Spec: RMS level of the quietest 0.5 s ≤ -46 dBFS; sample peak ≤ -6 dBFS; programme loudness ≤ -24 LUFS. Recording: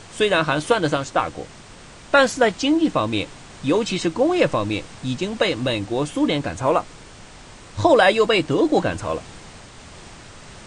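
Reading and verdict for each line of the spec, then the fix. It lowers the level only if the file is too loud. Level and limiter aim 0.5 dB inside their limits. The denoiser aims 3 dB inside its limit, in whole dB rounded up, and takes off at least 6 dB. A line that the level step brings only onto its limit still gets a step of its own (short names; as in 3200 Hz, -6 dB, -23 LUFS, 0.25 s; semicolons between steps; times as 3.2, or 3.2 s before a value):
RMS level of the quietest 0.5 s -43 dBFS: fail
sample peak -4.0 dBFS: fail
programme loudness -20.5 LUFS: fail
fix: gain -4 dB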